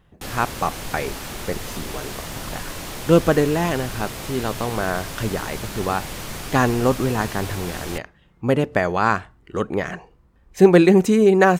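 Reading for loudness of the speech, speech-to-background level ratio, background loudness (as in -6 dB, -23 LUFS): -21.0 LUFS, 11.0 dB, -32.0 LUFS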